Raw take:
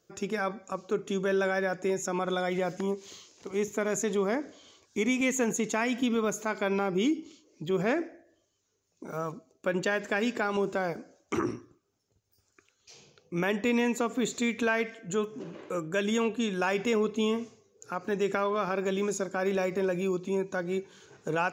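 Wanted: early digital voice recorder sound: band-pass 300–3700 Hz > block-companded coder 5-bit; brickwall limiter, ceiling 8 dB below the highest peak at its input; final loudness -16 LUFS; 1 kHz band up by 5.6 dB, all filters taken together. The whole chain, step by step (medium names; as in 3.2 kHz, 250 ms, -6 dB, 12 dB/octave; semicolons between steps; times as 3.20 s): peaking EQ 1 kHz +7.5 dB; peak limiter -19 dBFS; band-pass 300–3700 Hz; block-companded coder 5-bit; trim +16 dB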